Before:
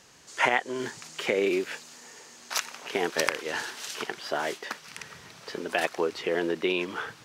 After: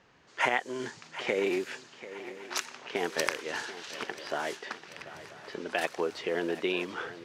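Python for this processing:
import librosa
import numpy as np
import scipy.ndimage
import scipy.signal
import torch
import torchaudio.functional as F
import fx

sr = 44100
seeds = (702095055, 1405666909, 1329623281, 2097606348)

y = fx.env_lowpass(x, sr, base_hz=2400.0, full_db=-24.5)
y = fx.echo_swing(y, sr, ms=985, ratio=3, feedback_pct=45, wet_db=-15)
y = F.gain(torch.from_numpy(y), -3.5).numpy()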